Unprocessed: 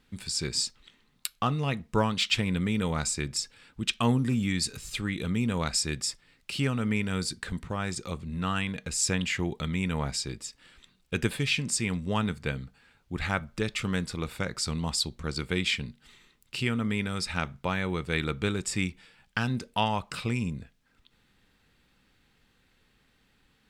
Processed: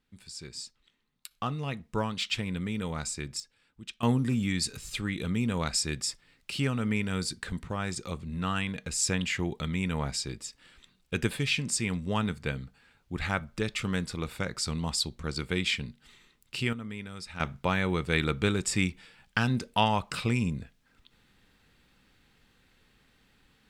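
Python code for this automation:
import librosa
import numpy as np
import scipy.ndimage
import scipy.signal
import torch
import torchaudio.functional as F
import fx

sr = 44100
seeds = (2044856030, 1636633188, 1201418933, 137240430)

y = fx.gain(x, sr, db=fx.steps((0.0, -12.0), (1.31, -5.0), (3.4, -13.5), (4.03, -1.0), (16.73, -10.0), (17.4, 2.0)))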